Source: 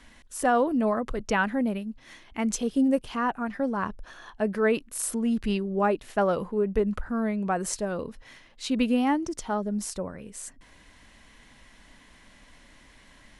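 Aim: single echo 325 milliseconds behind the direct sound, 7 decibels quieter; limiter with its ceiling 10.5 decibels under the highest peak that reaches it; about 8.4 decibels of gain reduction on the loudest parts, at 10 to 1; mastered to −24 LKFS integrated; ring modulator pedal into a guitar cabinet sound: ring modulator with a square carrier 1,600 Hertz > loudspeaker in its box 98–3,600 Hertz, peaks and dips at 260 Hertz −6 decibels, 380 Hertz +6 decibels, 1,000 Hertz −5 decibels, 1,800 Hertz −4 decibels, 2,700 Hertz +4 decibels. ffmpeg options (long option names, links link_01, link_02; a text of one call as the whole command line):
ffmpeg -i in.wav -af "acompressor=threshold=-27dB:ratio=10,alimiter=level_in=0.5dB:limit=-24dB:level=0:latency=1,volume=-0.5dB,aecho=1:1:325:0.447,aeval=exprs='val(0)*sgn(sin(2*PI*1600*n/s))':channel_layout=same,highpass=98,equalizer=frequency=260:width_type=q:width=4:gain=-6,equalizer=frequency=380:width_type=q:width=4:gain=6,equalizer=frequency=1000:width_type=q:width=4:gain=-5,equalizer=frequency=1800:width_type=q:width=4:gain=-4,equalizer=frequency=2700:width_type=q:width=4:gain=4,lowpass=frequency=3600:width=0.5412,lowpass=frequency=3600:width=1.3066,volume=10dB" out.wav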